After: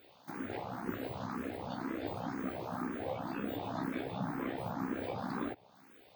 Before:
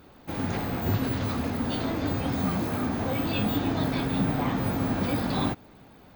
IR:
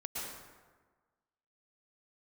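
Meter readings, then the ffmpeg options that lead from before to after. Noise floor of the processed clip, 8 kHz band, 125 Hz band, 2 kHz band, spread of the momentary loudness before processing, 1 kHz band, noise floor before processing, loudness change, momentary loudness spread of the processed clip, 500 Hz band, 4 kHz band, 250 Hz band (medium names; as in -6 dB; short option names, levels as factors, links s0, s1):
-62 dBFS, under -15 dB, -16.0 dB, -9.5 dB, 3 LU, -8.0 dB, -52 dBFS, -11.5 dB, 4 LU, -8.0 dB, -16.0 dB, -11.5 dB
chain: -filter_complex "[0:a]acrossover=split=1900[s0][s1];[s0]tremolo=f=64:d=0.75[s2];[s1]acompressor=threshold=0.00282:ratio=6[s3];[s2][s3]amix=inputs=2:normalize=0,highpass=f=360:p=1,asplit=2[s4][s5];[s5]afreqshift=2[s6];[s4][s6]amix=inputs=2:normalize=1"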